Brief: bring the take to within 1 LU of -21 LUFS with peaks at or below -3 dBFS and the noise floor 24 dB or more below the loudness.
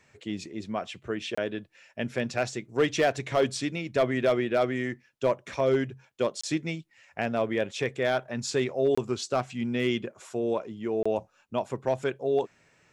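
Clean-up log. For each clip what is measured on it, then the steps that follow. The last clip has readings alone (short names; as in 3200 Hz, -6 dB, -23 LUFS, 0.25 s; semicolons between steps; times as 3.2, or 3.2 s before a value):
clipped 0.2%; flat tops at -16.0 dBFS; dropouts 4; longest dropout 25 ms; loudness -29.0 LUFS; peak -16.0 dBFS; loudness target -21.0 LUFS
-> clip repair -16 dBFS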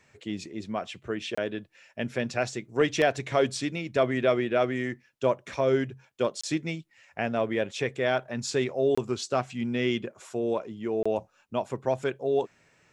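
clipped 0.0%; dropouts 4; longest dropout 25 ms
-> interpolate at 1.35/6.41/8.95/11.03, 25 ms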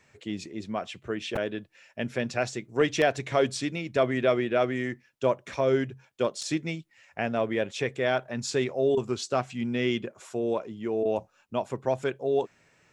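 dropouts 0; loudness -29.0 LUFS; peak -9.5 dBFS; loudness target -21.0 LUFS
-> gain +8 dB; limiter -3 dBFS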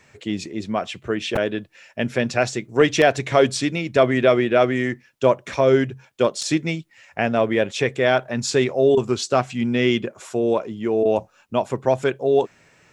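loudness -21.0 LUFS; peak -3.0 dBFS; noise floor -57 dBFS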